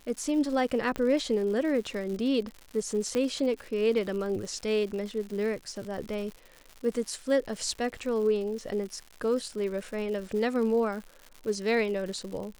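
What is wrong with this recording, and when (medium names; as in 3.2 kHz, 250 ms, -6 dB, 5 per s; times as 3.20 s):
crackle 160 per s -37 dBFS
0.96 s: pop -18 dBFS
3.15 s: pop -17 dBFS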